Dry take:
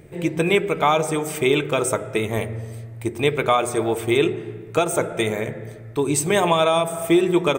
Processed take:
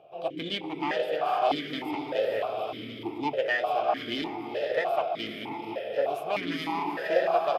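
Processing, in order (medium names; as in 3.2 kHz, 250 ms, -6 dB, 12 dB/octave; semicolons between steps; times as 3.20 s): on a send: echo that smears into a reverb 468 ms, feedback 44%, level -4.5 dB; on the sum: one-sided clip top -22 dBFS; formant shift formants +6 st; delay 739 ms -12 dB; stepped vowel filter 3.3 Hz; trim +3.5 dB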